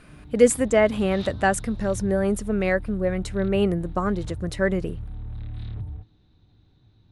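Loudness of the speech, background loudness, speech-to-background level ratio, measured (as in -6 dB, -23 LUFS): -23.5 LUFS, -37.5 LUFS, 14.0 dB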